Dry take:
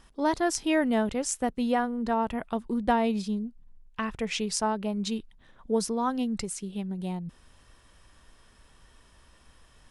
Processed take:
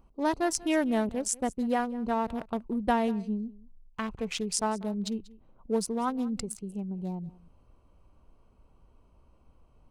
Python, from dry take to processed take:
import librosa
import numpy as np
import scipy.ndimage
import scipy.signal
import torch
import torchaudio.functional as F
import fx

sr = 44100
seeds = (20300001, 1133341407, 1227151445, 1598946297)

y = fx.wiener(x, sr, points=25)
y = fx.high_shelf(y, sr, hz=7700.0, db=8.0)
y = y + 10.0 ** (-21.0 / 20.0) * np.pad(y, (int(189 * sr / 1000.0), 0))[:len(y)]
y = y * 10.0 ** (-1.5 / 20.0)